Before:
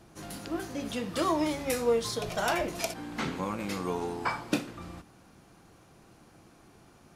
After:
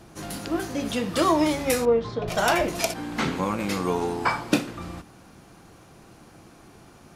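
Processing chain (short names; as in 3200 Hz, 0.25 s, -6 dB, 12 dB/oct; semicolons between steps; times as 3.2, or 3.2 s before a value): 1.85–2.28 tape spacing loss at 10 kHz 38 dB; gain +7 dB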